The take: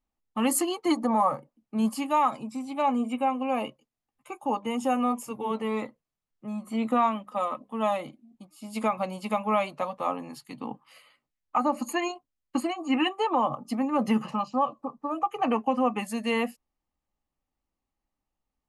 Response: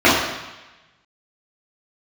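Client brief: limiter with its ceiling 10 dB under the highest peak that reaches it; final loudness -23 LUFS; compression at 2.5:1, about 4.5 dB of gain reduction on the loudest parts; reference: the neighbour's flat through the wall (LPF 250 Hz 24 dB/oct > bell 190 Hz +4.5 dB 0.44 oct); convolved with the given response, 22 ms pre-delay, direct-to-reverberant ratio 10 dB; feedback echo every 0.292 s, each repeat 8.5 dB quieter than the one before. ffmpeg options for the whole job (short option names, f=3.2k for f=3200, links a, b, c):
-filter_complex "[0:a]acompressor=threshold=-26dB:ratio=2.5,alimiter=level_in=0.5dB:limit=-24dB:level=0:latency=1,volume=-0.5dB,aecho=1:1:292|584|876|1168:0.376|0.143|0.0543|0.0206,asplit=2[a][b];[1:a]atrim=start_sample=2205,adelay=22[c];[b][c]afir=irnorm=-1:irlink=0,volume=-38.5dB[d];[a][d]amix=inputs=2:normalize=0,lowpass=f=250:w=0.5412,lowpass=f=250:w=1.3066,equalizer=f=190:t=o:w=0.44:g=4.5,volume=15dB"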